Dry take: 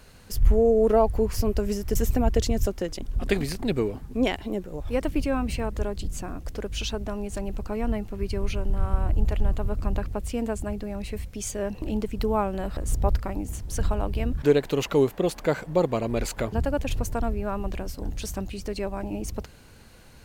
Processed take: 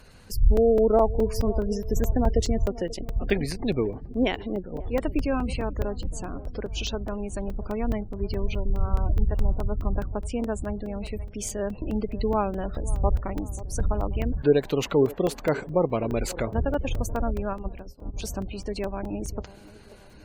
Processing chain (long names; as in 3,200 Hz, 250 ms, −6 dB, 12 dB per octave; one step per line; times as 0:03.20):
gate on every frequency bin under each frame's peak −30 dB strong
delay with a band-pass on its return 536 ms, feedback 48%, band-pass 470 Hz, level −16.5 dB
regular buffer underruns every 0.21 s, samples 128, zero, from 0:00.57
0:17.53–0:18.14: expander for the loud parts 2.5 to 1, over −38 dBFS